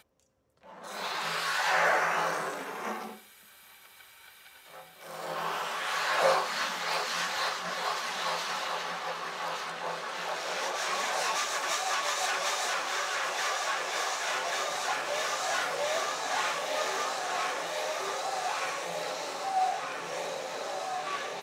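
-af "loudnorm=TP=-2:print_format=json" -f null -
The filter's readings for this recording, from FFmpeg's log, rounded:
"input_i" : "-31.1",
"input_tp" : "-13.2",
"input_lra" : "3.6",
"input_thresh" : "-41.5",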